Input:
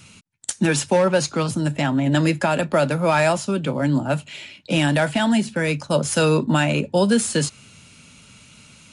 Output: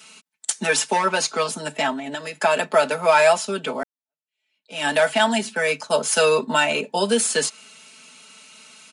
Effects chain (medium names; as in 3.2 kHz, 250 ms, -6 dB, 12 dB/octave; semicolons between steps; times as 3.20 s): high-pass 460 Hz 12 dB/octave; 3.83–4.87 s: fade in exponential; comb 4.6 ms, depth 100%; 1.92–2.42 s: compression 12:1, threshold -27 dBFS, peak gain reduction 11.5 dB